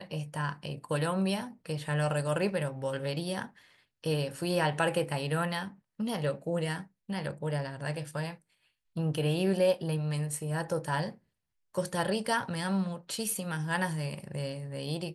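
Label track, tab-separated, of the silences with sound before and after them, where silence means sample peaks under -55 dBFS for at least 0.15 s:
3.790000	4.030000	silence
5.790000	5.990000	silence
6.870000	7.090000	silence
8.420000	8.960000	silence
11.180000	11.740000	silence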